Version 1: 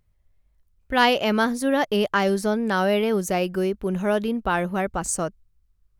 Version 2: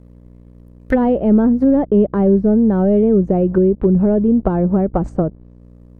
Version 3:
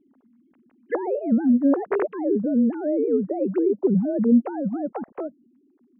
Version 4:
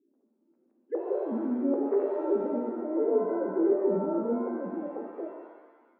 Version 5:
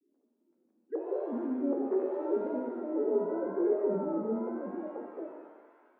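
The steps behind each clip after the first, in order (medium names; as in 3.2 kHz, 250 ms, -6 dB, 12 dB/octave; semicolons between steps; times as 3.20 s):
hum 60 Hz, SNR 24 dB; waveshaping leveller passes 2; low-pass that closes with the level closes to 360 Hz, closed at -14.5 dBFS; trim +6 dB
formants replaced by sine waves; trim -8 dB
band-pass filter 420 Hz, Q 2.2; pitch-shifted reverb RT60 1.2 s, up +7 st, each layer -8 dB, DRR 1.5 dB; trim -5 dB
vibrato 0.87 Hz 90 cents; feedback echo behind a high-pass 425 ms, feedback 67%, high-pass 1.9 kHz, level -8.5 dB; trim -3.5 dB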